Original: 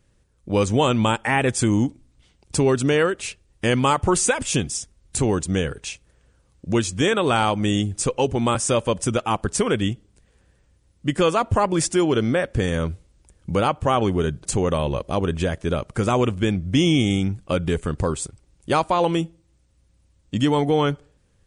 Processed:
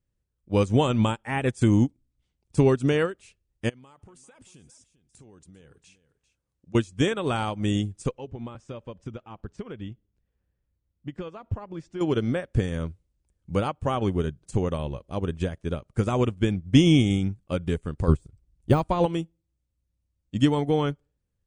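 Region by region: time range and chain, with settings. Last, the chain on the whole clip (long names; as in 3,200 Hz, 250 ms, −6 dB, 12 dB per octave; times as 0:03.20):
0:03.69–0:06.75: low-shelf EQ 74 Hz −11.5 dB + downward compressor 8 to 1, threshold −28 dBFS + single-tap delay 396 ms −15.5 dB
0:08.18–0:12.01: downward compressor 2 to 1, threshold −23 dBFS + high-frequency loss of the air 150 metres
0:18.08–0:19.06: de-essing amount 75% + low-shelf EQ 170 Hz +11.5 dB
whole clip: low-shelf EQ 280 Hz +6.5 dB; expander for the loud parts 2.5 to 1, over −26 dBFS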